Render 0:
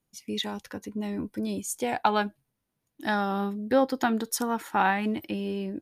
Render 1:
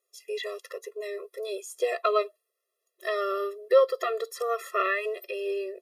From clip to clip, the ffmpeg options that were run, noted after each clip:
ffmpeg -i in.wav -filter_complex "[0:a]acrossover=split=3100[link_01][link_02];[link_02]acompressor=threshold=-42dB:ratio=4:attack=1:release=60[link_03];[link_01][link_03]amix=inputs=2:normalize=0,afftfilt=real='re*eq(mod(floor(b*sr/1024/350),2),1)':imag='im*eq(mod(floor(b*sr/1024/350),2),1)':win_size=1024:overlap=0.75,volume=5dB" out.wav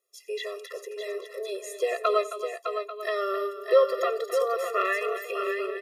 ffmpeg -i in.wav -af "aecho=1:1:89|267|608|841:0.126|0.251|0.447|0.2" out.wav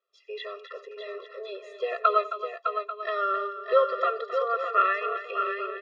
ffmpeg -i in.wav -af "highpass=500,equalizer=frequency=790:width_type=q:width=4:gain=-3,equalizer=frequency=1400:width_type=q:width=4:gain=9,equalizer=frequency=2100:width_type=q:width=4:gain=-7,lowpass=frequency=3700:width=0.5412,lowpass=frequency=3700:width=1.3066" out.wav

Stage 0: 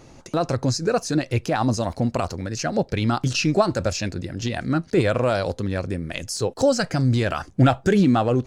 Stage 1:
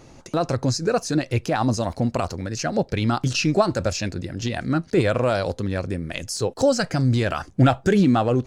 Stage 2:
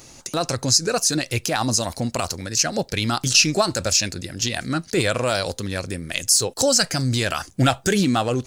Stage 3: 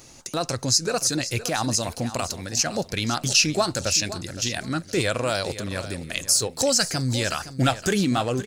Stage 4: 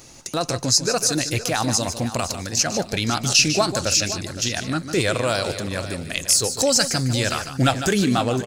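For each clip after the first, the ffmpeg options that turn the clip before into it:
ffmpeg -i in.wav -af anull out.wav
ffmpeg -i in.wav -af "crystalizer=i=6.5:c=0,volume=-3dB" out.wav
ffmpeg -i in.wav -af "aecho=1:1:516|1032|1548:0.211|0.0528|0.0132,volume=-3dB" out.wav
ffmpeg -i in.wav -af "aecho=1:1:150:0.299,volume=2.5dB" out.wav

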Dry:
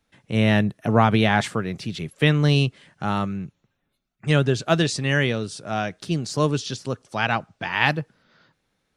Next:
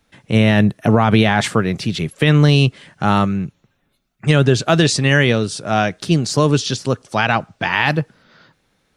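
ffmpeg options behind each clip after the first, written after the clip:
ffmpeg -i in.wav -af "alimiter=level_in=10dB:limit=-1dB:release=50:level=0:latency=1,volume=-1dB" out.wav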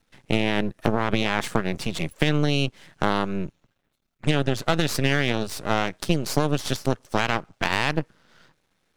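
ffmpeg -i in.wav -af "acompressor=threshold=-17dB:ratio=6,aeval=exprs='0.531*(cos(1*acos(clip(val(0)/0.531,-1,1)))-cos(1*PI/2))+0.0266*(cos(7*acos(clip(val(0)/0.531,-1,1)))-cos(7*PI/2))':channel_layout=same,aeval=exprs='max(val(0),0)':channel_layout=same,volume=1.5dB" out.wav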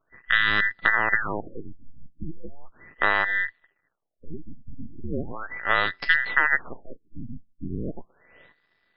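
ffmpeg -i in.wav -af "afftfilt=real='real(if(between(b,1,1012),(2*floor((b-1)/92)+1)*92-b,b),0)':imag='imag(if(between(b,1,1012),(2*floor((b-1)/92)+1)*92-b,b),0)*if(between(b,1,1012),-1,1)':win_size=2048:overlap=0.75,afftfilt=real='re*lt(b*sr/1024,270*pow(5400/270,0.5+0.5*sin(2*PI*0.37*pts/sr)))':imag='im*lt(b*sr/1024,270*pow(5400/270,0.5+0.5*sin(2*PI*0.37*pts/sr)))':win_size=1024:overlap=0.75" out.wav

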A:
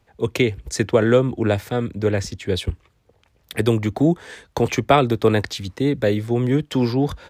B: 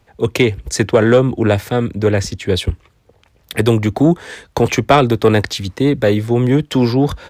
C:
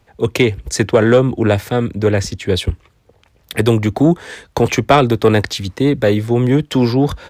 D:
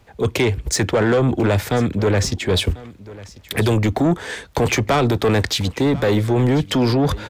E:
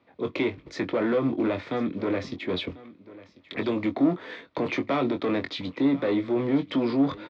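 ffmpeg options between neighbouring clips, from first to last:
ffmpeg -i in.wav -af "acontrast=67" out.wav
ffmpeg -i in.wav -af anull out.wav
ffmpeg -i in.wav -af "alimiter=limit=-9.5dB:level=0:latency=1:release=18,asoftclip=type=tanh:threshold=-14dB,aecho=1:1:1043:0.106,volume=3dB" out.wav
ffmpeg -i in.wav -filter_complex "[0:a]acrusher=bits=7:mode=log:mix=0:aa=0.000001,highpass=260,equalizer=frequency=290:width_type=q:width=4:gain=6,equalizer=frequency=430:width_type=q:width=4:gain=-6,equalizer=frequency=810:width_type=q:width=4:gain=-9,equalizer=frequency=1600:width_type=q:width=4:gain=-9,equalizer=frequency=2900:width_type=q:width=4:gain=-8,lowpass=frequency=3400:width=0.5412,lowpass=frequency=3400:width=1.3066,asplit=2[link_01][link_02];[link_02]adelay=22,volume=-7.5dB[link_03];[link_01][link_03]amix=inputs=2:normalize=0,volume=-5.5dB" out.wav

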